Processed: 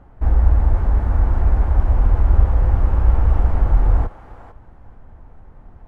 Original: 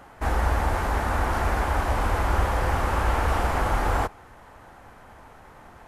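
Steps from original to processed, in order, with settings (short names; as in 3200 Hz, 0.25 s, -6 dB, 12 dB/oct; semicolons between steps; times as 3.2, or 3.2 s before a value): tilt -4.5 dB/oct; on a send: thinning echo 0.45 s, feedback 18%, high-pass 640 Hz, level -10 dB; on the sum: gain -8 dB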